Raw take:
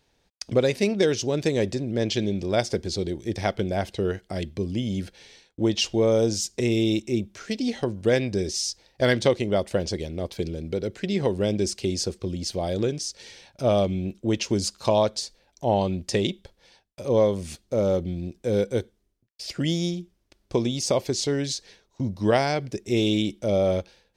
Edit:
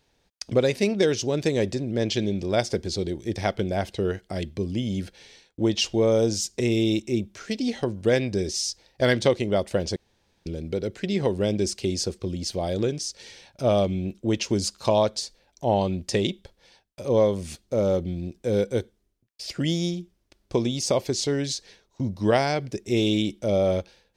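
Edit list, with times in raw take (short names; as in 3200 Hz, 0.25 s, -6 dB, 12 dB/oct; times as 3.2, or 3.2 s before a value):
9.96–10.46 room tone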